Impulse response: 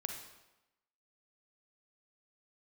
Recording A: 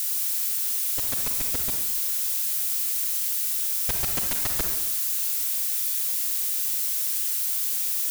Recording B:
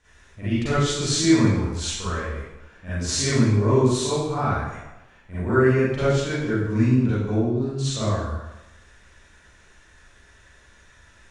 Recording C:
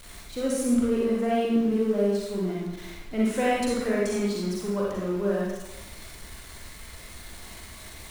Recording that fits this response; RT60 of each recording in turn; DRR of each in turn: A; 0.95, 0.95, 0.95 s; 3.5, -13.5, -5.5 dB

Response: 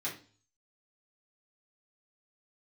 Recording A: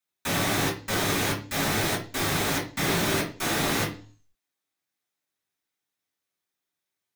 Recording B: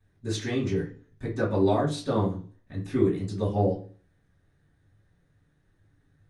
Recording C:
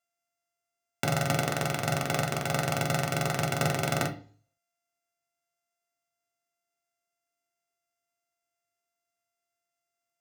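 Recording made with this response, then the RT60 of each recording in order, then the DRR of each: A; 0.40, 0.40, 0.40 s; -7.5, -13.5, 2.5 dB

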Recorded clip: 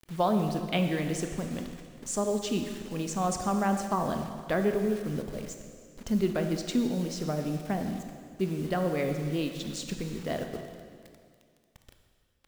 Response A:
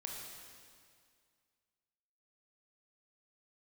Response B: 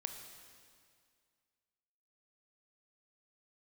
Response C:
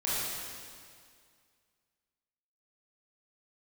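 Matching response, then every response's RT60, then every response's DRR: B; 2.1, 2.1, 2.1 s; -1.0, 5.0, -9.0 dB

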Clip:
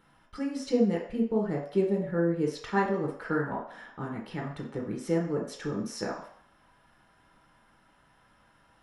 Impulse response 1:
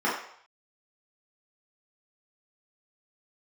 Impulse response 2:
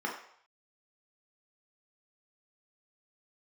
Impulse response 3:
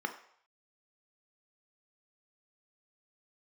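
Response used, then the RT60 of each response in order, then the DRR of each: 2; 0.65, 0.65, 0.65 s; -8.5, -2.0, 5.5 dB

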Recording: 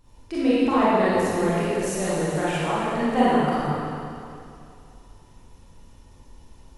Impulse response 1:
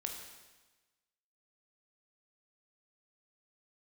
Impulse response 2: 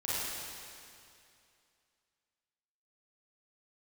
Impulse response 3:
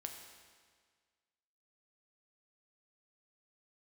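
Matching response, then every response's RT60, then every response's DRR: 2; 1.2, 2.5, 1.7 s; 1.5, -10.5, 2.5 dB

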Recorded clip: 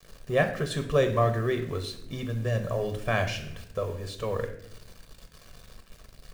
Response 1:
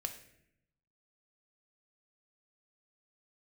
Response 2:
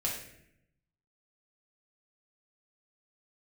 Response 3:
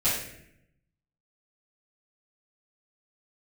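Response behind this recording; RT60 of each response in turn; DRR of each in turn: 1; 0.75, 0.75, 0.75 s; 5.5, -4.0, -13.5 dB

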